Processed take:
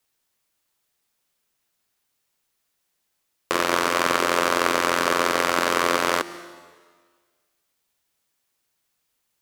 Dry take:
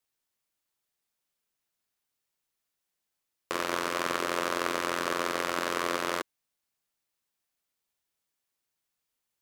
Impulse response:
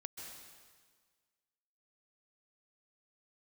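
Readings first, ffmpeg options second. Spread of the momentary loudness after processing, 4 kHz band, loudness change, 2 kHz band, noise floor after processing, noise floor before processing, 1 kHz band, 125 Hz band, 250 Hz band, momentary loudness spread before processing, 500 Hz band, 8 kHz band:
6 LU, +9.0 dB, +9.0 dB, +9.0 dB, -75 dBFS, -84 dBFS, +9.5 dB, +8.0 dB, +7.5 dB, 4 LU, +8.5 dB, +9.5 dB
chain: -filter_complex "[0:a]asplit=2[s0][s1];[1:a]atrim=start_sample=2205[s2];[s1][s2]afir=irnorm=-1:irlink=0,volume=0.473[s3];[s0][s3]amix=inputs=2:normalize=0,volume=2.24"

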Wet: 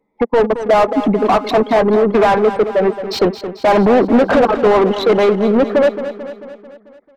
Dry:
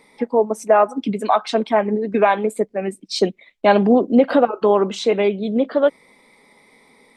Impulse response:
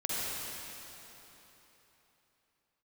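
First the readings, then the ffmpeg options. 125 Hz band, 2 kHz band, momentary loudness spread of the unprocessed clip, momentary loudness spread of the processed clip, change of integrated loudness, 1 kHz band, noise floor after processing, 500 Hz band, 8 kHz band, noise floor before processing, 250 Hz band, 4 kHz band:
+6.0 dB, +5.0 dB, 8 LU, 6 LU, +4.5 dB, +4.0 dB, -51 dBFS, +5.0 dB, no reading, -55 dBFS, +4.0 dB, +3.0 dB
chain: -filter_complex "[0:a]anlmdn=251,asplit=2[s0][s1];[s1]highpass=f=720:p=1,volume=28.2,asoftclip=type=tanh:threshold=0.75[s2];[s0][s2]amix=inputs=2:normalize=0,lowpass=f=1100:p=1,volume=0.501,aecho=1:1:221|442|663|884|1105|1326:0.266|0.149|0.0834|0.0467|0.0262|0.0147,volume=0.891"

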